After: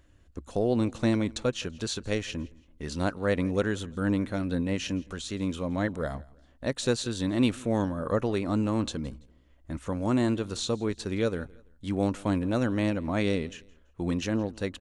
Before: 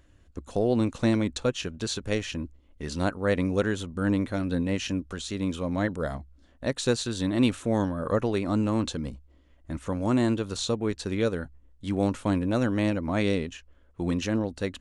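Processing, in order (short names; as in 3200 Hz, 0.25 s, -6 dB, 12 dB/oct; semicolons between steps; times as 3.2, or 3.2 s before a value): feedback echo 0.167 s, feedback 34%, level -23.5 dB; gain -1.5 dB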